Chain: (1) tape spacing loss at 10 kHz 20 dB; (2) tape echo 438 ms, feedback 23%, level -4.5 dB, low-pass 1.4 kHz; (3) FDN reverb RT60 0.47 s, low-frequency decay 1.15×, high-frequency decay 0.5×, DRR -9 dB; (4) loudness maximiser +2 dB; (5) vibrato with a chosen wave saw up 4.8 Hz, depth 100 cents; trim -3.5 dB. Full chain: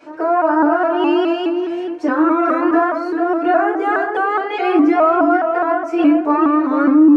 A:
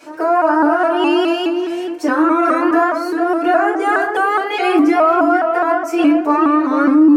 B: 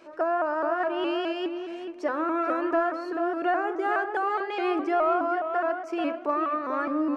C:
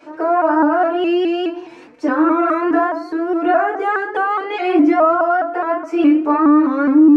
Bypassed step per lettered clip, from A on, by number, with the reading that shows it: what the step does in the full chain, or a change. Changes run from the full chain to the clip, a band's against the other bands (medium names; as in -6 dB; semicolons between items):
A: 1, 4 kHz band +5.0 dB; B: 3, crest factor change +2.5 dB; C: 2, momentary loudness spread change +2 LU